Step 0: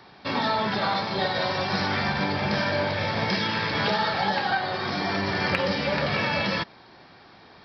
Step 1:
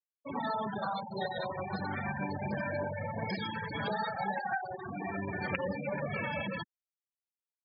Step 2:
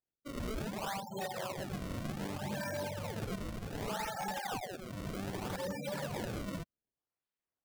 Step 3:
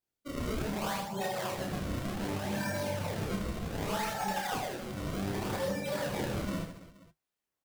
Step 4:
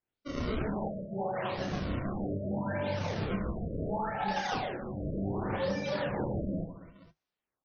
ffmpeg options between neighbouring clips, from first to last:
-af "afftfilt=real='re*gte(hypot(re,im),0.112)':imag='im*gte(hypot(re,im),0.112)':win_size=1024:overlap=0.75,volume=-8dB"
-af "acrusher=samples=30:mix=1:aa=0.000001:lfo=1:lforange=48:lforate=0.65,aeval=exprs='0.0376*(abs(mod(val(0)/0.0376+3,4)-2)-1)':c=same,volume=-3dB"
-af "flanger=delay=8.8:depth=5.6:regen=-51:speed=0.73:shape=sinusoidal,aecho=1:1:30|78|154.8|277.7|474.3:0.631|0.398|0.251|0.158|0.1,volume=6.5dB"
-af "afftfilt=real='re*lt(b*sr/1024,640*pow(6700/640,0.5+0.5*sin(2*PI*0.73*pts/sr)))':imag='im*lt(b*sr/1024,640*pow(6700/640,0.5+0.5*sin(2*PI*0.73*pts/sr)))':win_size=1024:overlap=0.75,volume=1.5dB"

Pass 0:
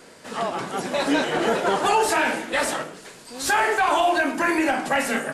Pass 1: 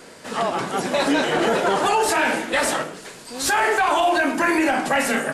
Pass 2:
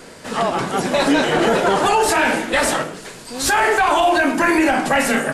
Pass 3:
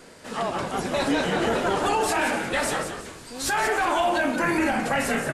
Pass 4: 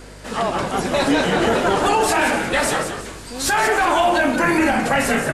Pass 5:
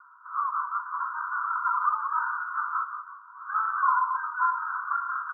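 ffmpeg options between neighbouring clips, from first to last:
-af "alimiter=limit=-15.5dB:level=0:latency=1:release=32,volume=4dB"
-af "lowshelf=f=110:g=9.5,volume=3dB"
-filter_complex "[0:a]asplit=5[a][b][c][d][e];[b]adelay=179,afreqshift=-100,volume=-8dB[f];[c]adelay=358,afreqshift=-200,volume=-17.4dB[g];[d]adelay=537,afreqshift=-300,volume=-26.7dB[h];[e]adelay=716,afreqshift=-400,volume=-36.1dB[i];[a][f][g][h][i]amix=inputs=5:normalize=0,volume=-8dB"
-af "aeval=exprs='val(0)+0.00447*(sin(2*PI*50*n/s)+sin(2*PI*2*50*n/s)/2+sin(2*PI*3*50*n/s)/3+sin(2*PI*4*50*n/s)/4+sin(2*PI*5*50*n/s)/5)':c=same,volume=6dB"
-af "asuperpass=centerf=1200:order=12:qfactor=2.5"

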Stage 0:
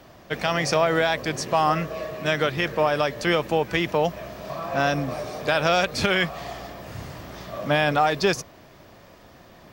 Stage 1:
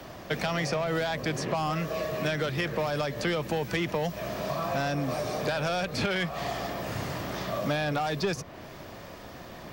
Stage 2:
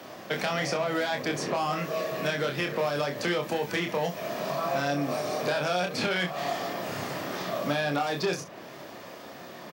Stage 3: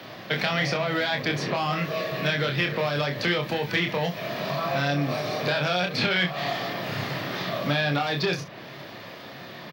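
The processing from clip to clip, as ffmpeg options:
-filter_complex "[0:a]asoftclip=type=tanh:threshold=-16.5dB,acrossover=split=92|200|3500[a][b][c][d];[a]acompressor=threshold=-58dB:ratio=4[e];[b]acompressor=threshold=-40dB:ratio=4[f];[c]acompressor=threshold=-35dB:ratio=4[g];[d]acompressor=threshold=-48dB:ratio=4[h];[e][f][g][h]amix=inputs=4:normalize=0,volume=5.5dB"
-filter_complex "[0:a]highpass=190,asplit=2[a][b];[b]aecho=0:1:28|66:0.596|0.188[c];[a][c]amix=inputs=2:normalize=0"
-af "equalizer=f=125:t=o:w=1:g=10,equalizer=f=2k:t=o:w=1:g=5,equalizer=f=4k:t=o:w=1:g=9,equalizer=f=8k:t=o:w=1:g=-11"

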